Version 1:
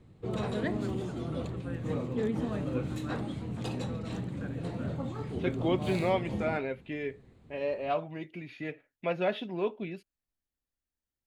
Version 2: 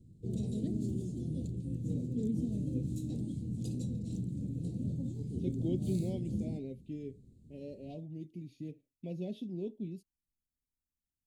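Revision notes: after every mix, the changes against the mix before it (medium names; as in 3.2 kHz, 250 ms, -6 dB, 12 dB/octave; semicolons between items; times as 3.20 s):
master: add Chebyshev band-stop 240–7000 Hz, order 2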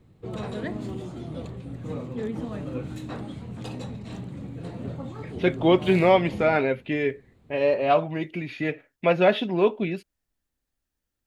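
first voice: muted; second voice +10.5 dB; master: remove Chebyshev band-stop 240–7000 Hz, order 2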